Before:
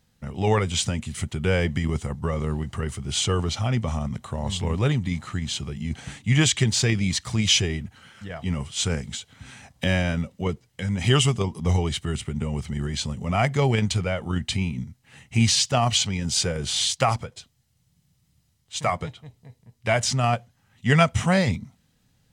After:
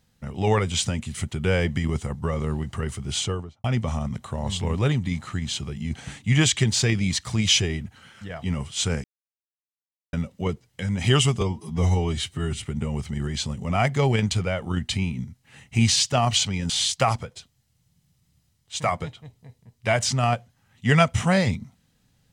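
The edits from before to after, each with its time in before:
3.10–3.64 s: studio fade out
9.04–10.13 s: mute
11.41–12.22 s: stretch 1.5×
16.29–16.70 s: delete

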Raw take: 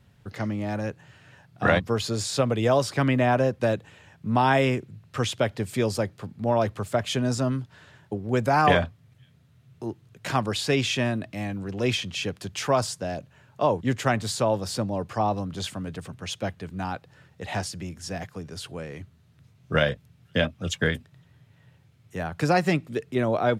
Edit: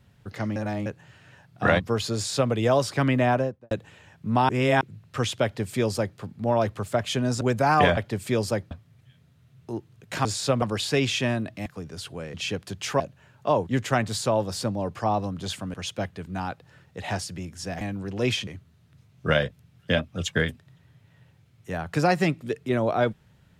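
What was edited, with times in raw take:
0.56–0.86 s: reverse
2.15–2.52 s: copy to 10.38 s
3.27–3.71 s: studio fade out
4.49–4.81 s: reverse
5.44–6.18 s: copy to 8.84 s
7.41–8.28 s: delete
11.42–12.08 s: swap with 18.25–18.93 s
12.74–13.14 s: delete
15.88–16.18 s: delete

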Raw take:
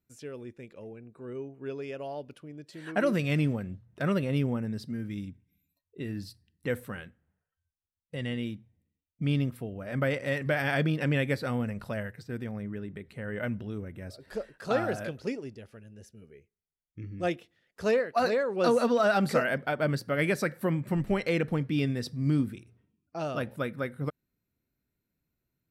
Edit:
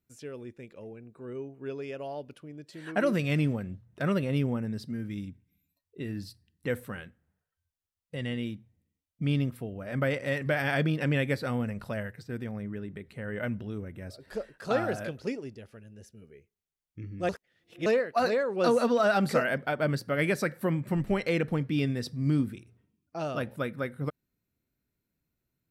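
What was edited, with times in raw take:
17.29–17.86 s: reverse

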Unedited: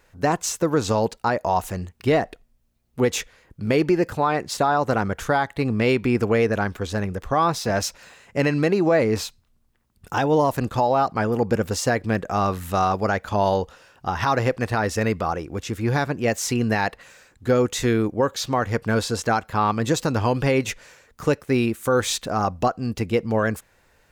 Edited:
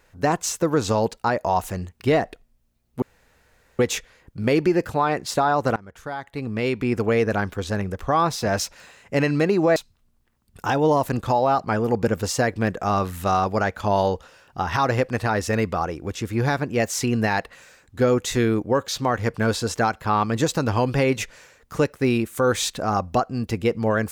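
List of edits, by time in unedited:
3.02 s: insert room tone 0.77 s
4.99–6.50 s: fade in, from -23.5 dB
8.99–9.24 s: delete

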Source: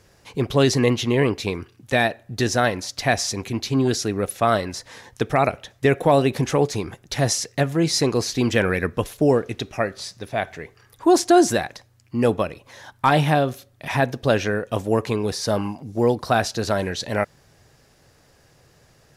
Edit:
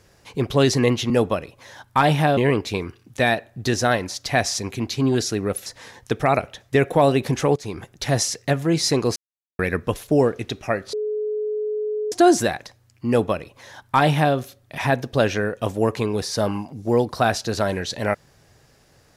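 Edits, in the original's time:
4.39–4.76 s: delete
6.66–6.91 s: fade in, from -15 dB
8.26–8.69 s: mute
10.03–11.22 s: bleep 425 Hz -22 dBFS
12.18–13.45 s: copy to 1.10 s

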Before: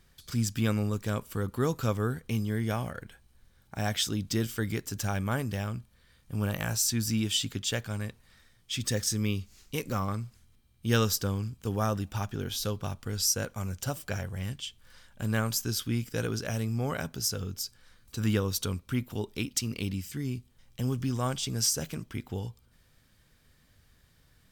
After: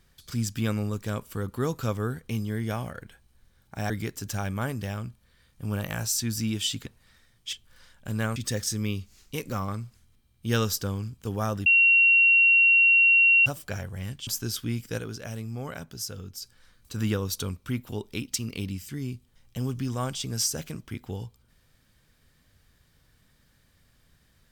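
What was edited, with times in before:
3.90–4.60 s: delete
7.56–8.09 s: delete
12.06–13.86 s: bleep 2.74 kHz -15 dBFS
14.67–15.50 s: move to 8.76 s
16.21–17.65 s: gain -4.5 dB

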